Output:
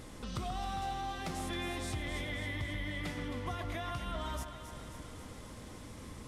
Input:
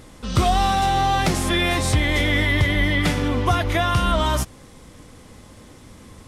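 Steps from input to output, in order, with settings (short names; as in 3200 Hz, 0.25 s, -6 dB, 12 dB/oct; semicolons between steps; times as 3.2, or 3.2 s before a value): compressor 3:1, threshold -38 dBFS, peak gain reduction 18 dB; on a send: echo with dull and thin repeats by turns 0.134 s, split 1900 Hz, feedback 80%, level -7 dB; on the sum: gain -4.5 dB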